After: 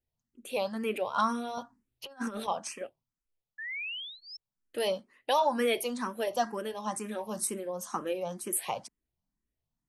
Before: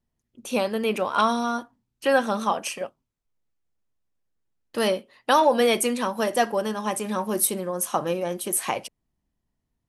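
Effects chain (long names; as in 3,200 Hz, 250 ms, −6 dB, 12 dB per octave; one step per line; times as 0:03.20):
0:01.57–0:02.48: compressor whose output falls as the input rises −28 dBFS, ratio −0.5
0:03.58–0:04.37: sound drawn into the spectrogram rise 1,700–5,400 Hz −31 dBFS
frequency shifter mixed with the dry sound +2.1 Hz
level −5.5 dB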